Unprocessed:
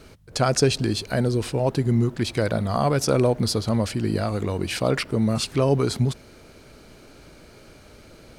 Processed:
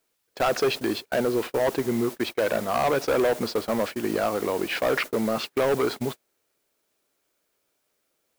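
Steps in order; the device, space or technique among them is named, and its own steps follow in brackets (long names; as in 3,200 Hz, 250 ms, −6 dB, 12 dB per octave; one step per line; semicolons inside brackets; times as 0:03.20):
aircraft radio (band-pass filter 380–2,500 Hz; hard clipping −23 dBFS, distortion −8 dB; white noise bed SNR 16 dB; noise gate −34 dBFS, range −33 dB)
level +5 dB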